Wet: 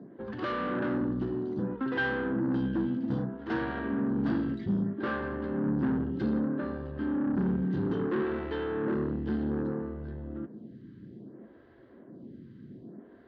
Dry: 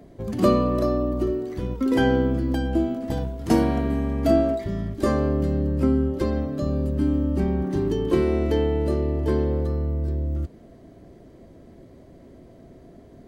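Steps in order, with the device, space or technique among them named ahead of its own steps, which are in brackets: vibe pedal into a guitar amplifier (photocell phaser 0.62 Hz; tube stage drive 29 dB, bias 0.4; speaker cabinet 110–3800 Hz, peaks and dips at 130 Hz +7 dB, 210 Hz +10 dB, 320 Hz +4 dB, 650 Hz -8 dB, 1600 Hz +9 dB, 2300 Hz -7 dB)

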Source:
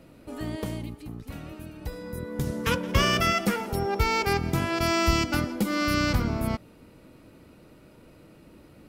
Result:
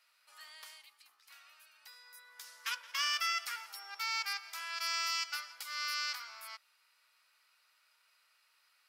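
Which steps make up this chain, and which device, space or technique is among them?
headphones lying on a table (HPF 1200 Hz 24 dB/oct; bell 4900 Hz +7 dB 0.55 oct); gain -8.5 dB

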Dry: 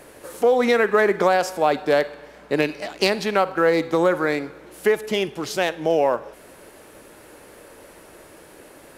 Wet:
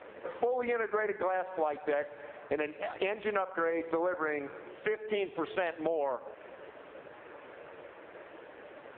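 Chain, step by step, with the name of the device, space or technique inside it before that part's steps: voicemail (BPF 380–2700 Hz; compressor 8:1, threshold -30 dBFS, peak gain reduction 15.5 dB; gain +2.5 dB; AMR-NB 5.15 kbps 8000 Hz)

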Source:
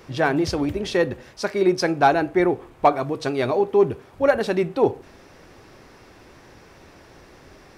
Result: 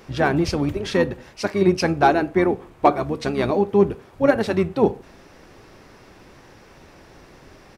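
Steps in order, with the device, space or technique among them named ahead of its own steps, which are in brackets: octave pedal (harmoniser -12 st -7 dB)

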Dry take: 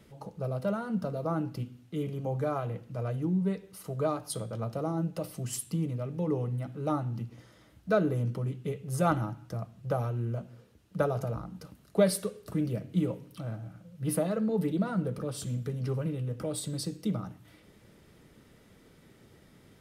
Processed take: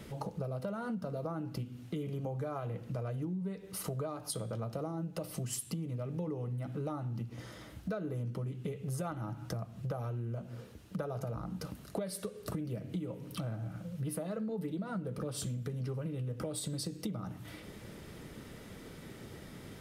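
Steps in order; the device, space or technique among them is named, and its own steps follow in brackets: serial compression, leveller first (compressor 2:1, threshold -35 dBFS, peak gain reduction 9.5 dB; compressor 5:1, threshold -45 dBFS, peak gain reduction 16.5 dB); gain +9 dB

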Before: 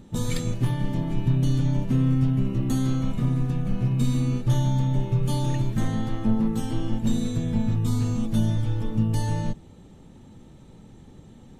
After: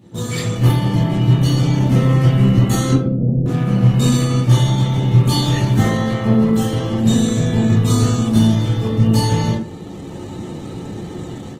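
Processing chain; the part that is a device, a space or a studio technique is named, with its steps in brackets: 2.92–3.46 steep low-pass 560 Hz 48 dB/oct; far-field microphone of a smart speaker (reverb RT60 0.50 s, pre-delay 12 ms, DRR -7.5 dB; HPF 140 Hz 12 dB/oct; AGC gain up to 14.5 dB; gain -1 dB; Opus 16 kbps 48000 Hz)

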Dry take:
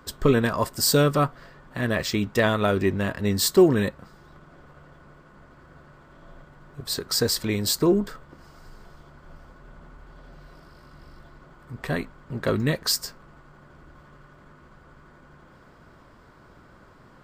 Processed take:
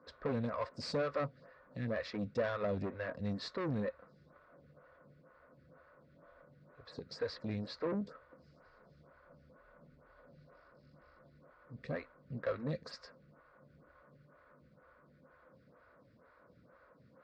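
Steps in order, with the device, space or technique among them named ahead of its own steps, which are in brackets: 6.9–7.94 air absorption 67 m; vibe pedal into a guitar amplifier (photocell phaser 2.1 Hz; tube stage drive 23 dB, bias 0.35; speaker cabinet 77–4500 Hz, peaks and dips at 370 Hz -9 dB, 520 Hz +9 dB, 830 Hz -7 dB, 3100 Hz -10 dB); gain -7.5 dB

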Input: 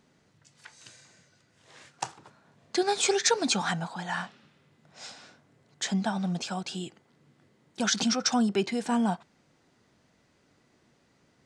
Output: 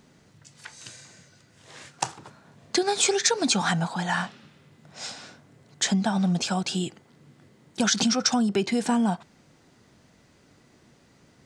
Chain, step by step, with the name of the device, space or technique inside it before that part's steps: ASMR close-microphone chain (low shelf 240 Hz +4.5 dB; compressor 6:1, threshold -26 dBFS, peak gain reduction 8 dB; high shelf 6200 Hz +4.5 dB); gain +6 dB

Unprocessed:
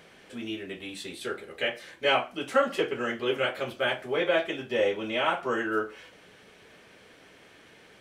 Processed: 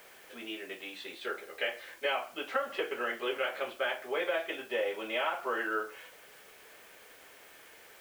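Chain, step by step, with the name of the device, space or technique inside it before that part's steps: baby monitor (BPF 490–3200 Hz; compressor, threshold -28 dBFS, peak gain reduction 10 dB; white noise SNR 23 dB)

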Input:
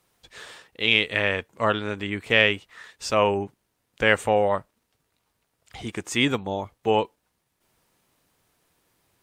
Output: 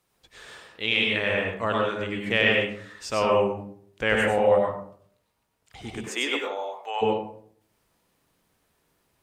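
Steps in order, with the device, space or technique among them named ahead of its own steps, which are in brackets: bathroom (reverb RT60 0.60 s, pre-delay 91 ms, DRR -1.5 dB); 6.07–7.01 HPF 290 Hz -> 740 Hz 24 dB/oct; gain -5 dB

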